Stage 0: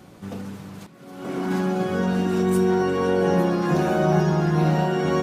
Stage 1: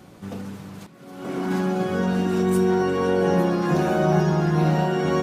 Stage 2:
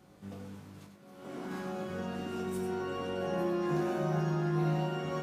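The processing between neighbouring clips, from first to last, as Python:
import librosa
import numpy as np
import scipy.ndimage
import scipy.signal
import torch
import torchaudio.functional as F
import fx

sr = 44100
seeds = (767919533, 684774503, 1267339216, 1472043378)

y1 = x
y2 = fx.comb_fb(y1, sr, f0_hz=50.0, decay_s=0.26, harmonics='all', damping=0.0, mix_pct=90)
y2 = y2 + 10.0 ** (-7.0 / 20.0) * np.pad(y2, (int(95 * sr / 1000.0), 0))[:len(y2)]
y2 = y2 * 10.0 ** (-7.0 / 20.0)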